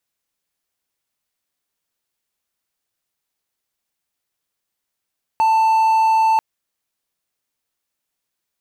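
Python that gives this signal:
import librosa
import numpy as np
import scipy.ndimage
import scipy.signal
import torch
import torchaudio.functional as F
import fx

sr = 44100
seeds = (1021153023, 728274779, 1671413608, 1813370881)

y = 10.0 ** (-10.0 / 20.0) * (1.0 - 4.0 * np.abs(np.mod(887.0 * (np.arange(round(0.99 * sr)) / sr) + 0.25, 1.0) - 0.5))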